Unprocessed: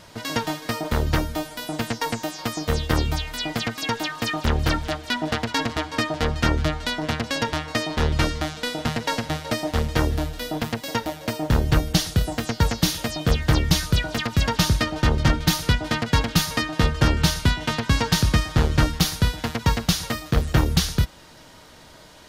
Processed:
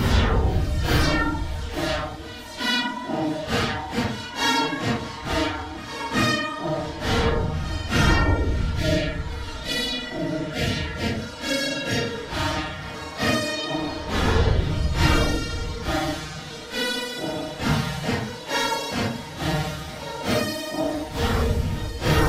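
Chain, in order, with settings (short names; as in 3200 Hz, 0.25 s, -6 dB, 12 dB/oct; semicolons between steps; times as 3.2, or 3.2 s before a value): spectral repair 6.62–7.5, 740–1600 Hz before; Paulstretch 4×, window 0.05 s, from 4.44; reverse echo 0.39 s -18.5 dB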